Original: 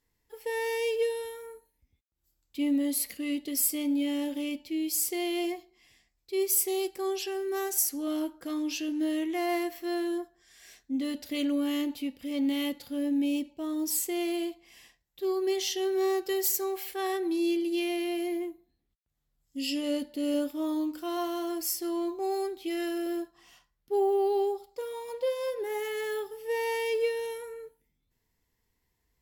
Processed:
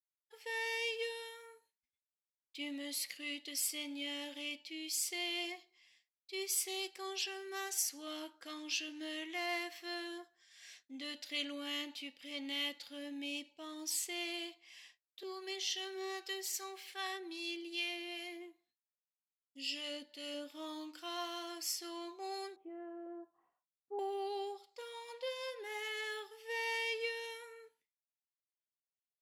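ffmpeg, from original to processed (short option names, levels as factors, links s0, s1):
-filter_complex "[0:a]asettb=1/sr,asplit=3[s0][s1][s2];[s0]atrim=end=15.234[s3];[s1]atrim=start=15.23:end=20.52,asetpts=PTS-STARTPTS,afade=t=in:d=0.004:c=qsin,afade=t=out:st=5.286:d=0.004:c=qsin,acrossover=split=580[s4][s5];[s4]aeval=exprs='val(0)*(1-0.5/2+0.5/2*cos(2*PI*2.5*n/s))':c=same[s6];[s5]aeval=exprs='val(0)*(1-0.5/2-0.5/2*cos(2*PI*2.5*n/s))':c=same[s7];[s6][s7]amix=inputs=2:normalize=0[s8];[s2]atrim=start=20.516[s9];[s3][s8]acrossfade=d=0.004:c1=hsin:c2=qsin[s10];[s10][s9]acrossfade=d=0.004:c1=qsin:c2=hsin,asettb=1/sr,asplit=3[s11][s12][s13];[s11]atrim=end=22.564[s14];[s12]atrim=start=22.56:end=23.99,asetpts=PTS-STARTPTS,afade=t=in:d=0.004:c=qsin,afade=t=out:st=1.426:d=0.004:c=qsin,lowpass=f=1000:w=0.5412,lowpass=f=1000:w=1.3066[s15];[s13]atrim=start=23.986[s16];[s14][s15]acrossfade=d=0.004:c1=hsin:c2=qsin[s17];[s17][s16]acrossfade=d=0.004:c1=qsin:c2=hsin,lowpass=3400,agate=range=0.0224:threshold=0.00112:ratio=3:detection=peak,aderivative,volume=3.16"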